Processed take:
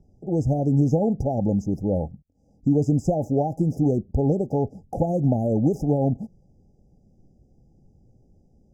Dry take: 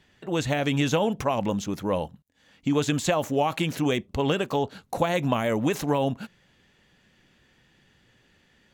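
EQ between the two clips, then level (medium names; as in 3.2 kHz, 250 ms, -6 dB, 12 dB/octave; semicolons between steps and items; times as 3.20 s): brick-wall FIR band-stop 860–4800 Hz; tilt EQ -3.5 dB/octave; -2.5 dB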